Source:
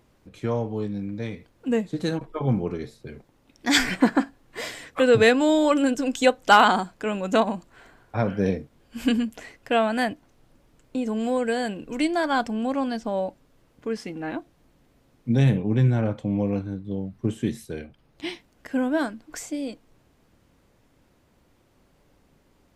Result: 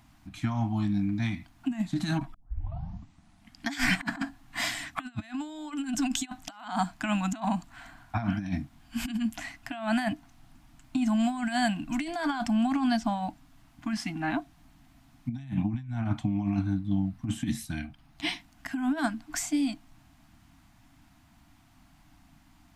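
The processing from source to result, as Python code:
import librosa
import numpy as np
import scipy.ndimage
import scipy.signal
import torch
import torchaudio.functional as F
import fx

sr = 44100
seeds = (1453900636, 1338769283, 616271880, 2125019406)

y = fx.edit(x, sr, fx.tape_start(start_s=2.34, length_s=1.39), tone=tone)
y = fx.over_compress(y, sr, threshold_db=-26.0, ratio=-0.5)
y = scipy.signal.sosfilt(scipy.signal.ellip(3, 1.0, 40, [300.0, 680.0], 'bandstop', fs=sr, output='sos'), y)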